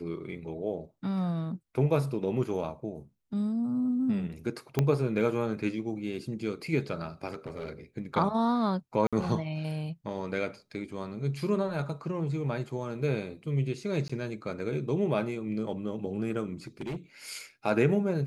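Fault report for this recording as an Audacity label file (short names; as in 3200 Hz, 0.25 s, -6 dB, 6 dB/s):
4.790000	4.790000	pop -12 dBFS
7.280000	7.700000	clipped -31.5 dBFS
9.070000	9.130000	gap 56 ms
14.080000	14.100000	gap 15 ms
16.670000	16.970000	clipped -31.5 dBFS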